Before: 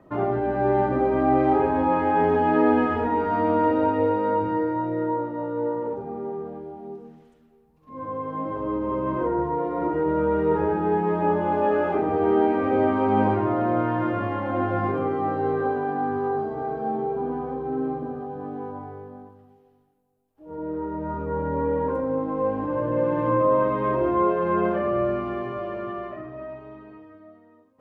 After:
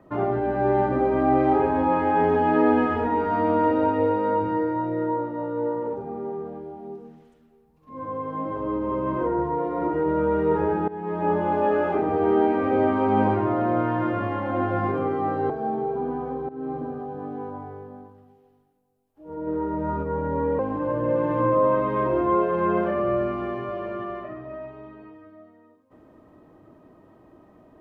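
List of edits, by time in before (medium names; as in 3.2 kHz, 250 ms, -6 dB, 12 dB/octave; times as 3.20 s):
10.88–11.34 s: fade in, from -18.5 dB
15.50–16.71 s: delete
17.70–17.98 s: fade in, from -18 dB
20.68–21.24 s: gain +3 dB
21.80–22.47 s: delete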